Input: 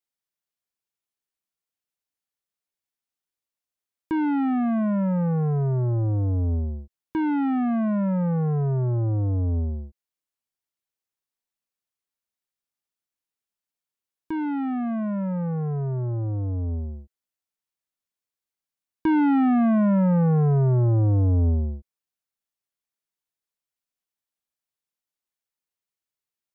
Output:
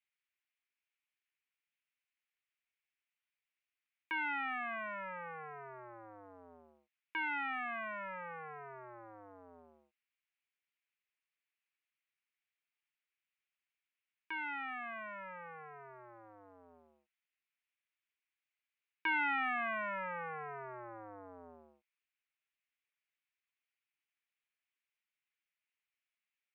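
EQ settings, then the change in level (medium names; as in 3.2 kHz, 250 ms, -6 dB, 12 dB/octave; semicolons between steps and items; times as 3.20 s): high-pass 1.5 kHz 12 dB/octave; resonant low-pass 2.4 kHz, resonance Q 2.8; 0.0 dB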